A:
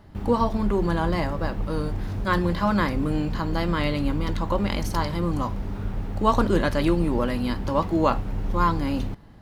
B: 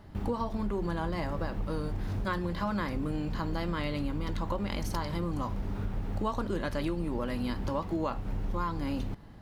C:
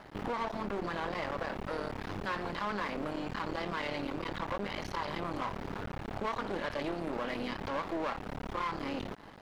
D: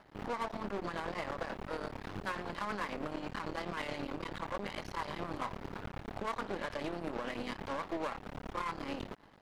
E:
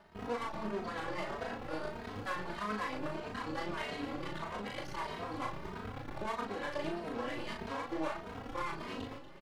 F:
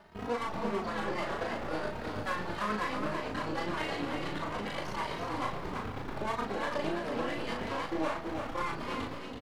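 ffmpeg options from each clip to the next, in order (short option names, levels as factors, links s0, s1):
-af "acompressor=threshold=0.0447:ratio=6,volume=0.841"
-filter_complex "[0:a]aeval=exprs='max(val(0),0)':c=same,asplit=2[s0][s1];[s1]highpass=f=720:p=1,volume=14.1,asoftclip=type=tanh:threshold=0.112[s2];[s0][s2]amix=inputs=2:normalize=0,lowpass=f=4000:p=1,volume=0.501,acrossover=split=4500[s3][s4];[s4]acompressor=threshold=0.00251:ratio=4:attack=1:release=60[s5];[s3][s5]amix=inputs=2:normalize=0,volume=0.531"
-af "tremolo=f=9.2:d=0.35,aeval=exprs='0.0562*(cos(1*acos(clip(val(0)/0.0562,-1,1)))-cos(1*PI/2))+0.00447*(cos(7*acos(clip(val(0)/0.0562,-1,1)))-cos(7*PI/2))':c=same,volume=0.891"
-filter_complex "[0:a]asplit=2[s0][s1];[s1]adelay=38,volume=0.668[s2];[s0][s2]amix=inputs=2:normalize=0,aecho=1:1:238|476|714|952|1190:0.2|0.0998|0.0499|0.0249|0.0125,asplit=2[s3][s4];[s4]adelay=2.9,afreqshift=1.6[s5];[s3][s5]amix=inputs=2:normalize=1,volume=1.19"
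-af "aecho=1:1:330:0.531,volume=1.5"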